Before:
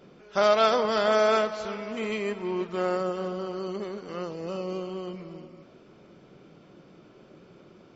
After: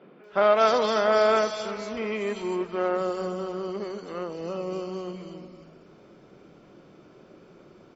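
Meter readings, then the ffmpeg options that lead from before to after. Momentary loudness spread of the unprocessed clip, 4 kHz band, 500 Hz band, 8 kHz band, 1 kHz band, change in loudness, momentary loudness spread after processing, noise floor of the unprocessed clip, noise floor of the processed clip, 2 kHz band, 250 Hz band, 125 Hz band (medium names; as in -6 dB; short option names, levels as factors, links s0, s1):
14 LU, -1.0 dB, +1.5 dB, no reading, +1.5 dB, +1.0 dB, 15 LU, -54 dBFS, -53 dBFS, +0.5 dB, +0.5 dB, -1.0 dB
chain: -filter_complex "[0:a]acrossover=split=150|3200[s0][s1][s2];[s2]adelay=240[s3];[s0]adelay=320[s4];[s4][s1][s3]amix=inputs=3:normalize=0,volume=1.19"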